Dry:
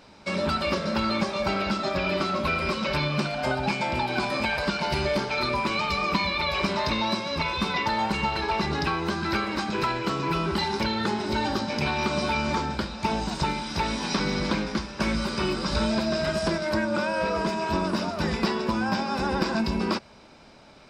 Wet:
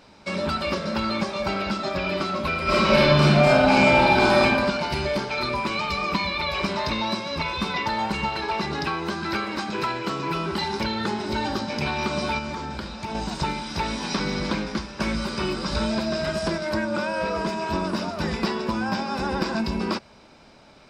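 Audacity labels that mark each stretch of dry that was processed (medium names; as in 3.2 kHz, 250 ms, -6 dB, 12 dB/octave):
2.630000	4.430000	reverb throw, RT60 1.3 s, DRR -8.5 dB
8.290000	10.620000	high-pass 120 Hz 6 dB/octave
12.380000	13.150000	compression, threshold -27 dBFS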